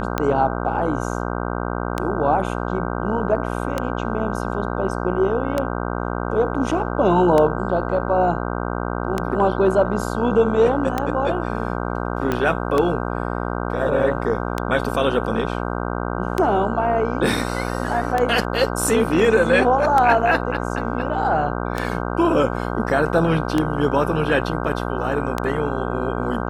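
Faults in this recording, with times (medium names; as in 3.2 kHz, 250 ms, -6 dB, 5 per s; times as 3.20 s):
buzz 60 Hz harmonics 26 -25 dBFS
tick 33 1/3 rpm -7 dBFS
12.32 s: pop -9 dBFS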